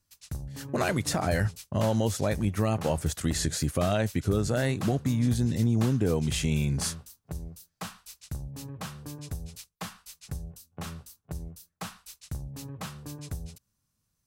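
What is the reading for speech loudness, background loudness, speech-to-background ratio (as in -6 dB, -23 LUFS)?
-28.0 LUFS, -41.0 LUFS, 13.0 dB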